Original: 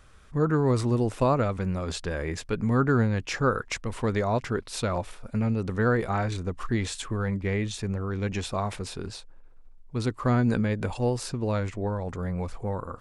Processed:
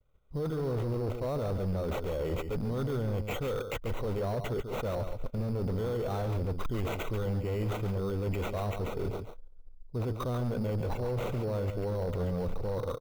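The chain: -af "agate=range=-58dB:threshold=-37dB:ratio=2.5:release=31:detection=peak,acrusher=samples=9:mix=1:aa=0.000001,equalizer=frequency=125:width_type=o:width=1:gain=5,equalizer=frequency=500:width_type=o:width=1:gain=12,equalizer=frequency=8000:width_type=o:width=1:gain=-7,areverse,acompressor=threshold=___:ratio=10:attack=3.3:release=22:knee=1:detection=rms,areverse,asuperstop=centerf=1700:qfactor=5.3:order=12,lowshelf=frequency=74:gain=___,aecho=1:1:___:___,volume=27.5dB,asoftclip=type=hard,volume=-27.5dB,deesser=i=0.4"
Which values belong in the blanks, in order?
-31dB, 10.5, 140, 0.398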